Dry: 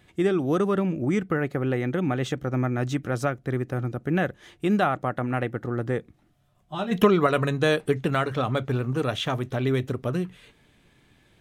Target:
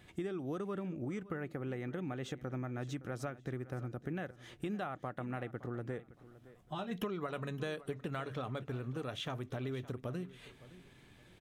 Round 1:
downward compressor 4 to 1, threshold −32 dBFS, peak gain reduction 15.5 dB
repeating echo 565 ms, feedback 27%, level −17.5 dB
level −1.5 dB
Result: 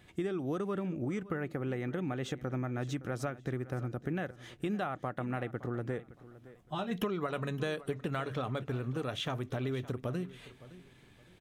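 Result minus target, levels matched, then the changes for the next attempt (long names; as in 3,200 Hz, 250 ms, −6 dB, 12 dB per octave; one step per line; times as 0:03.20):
downward compressor: peak gain reduction −4.5 dB
change: downward compressor 4 to 1, threshold −38 dBFS, peak gain reduction 20 dB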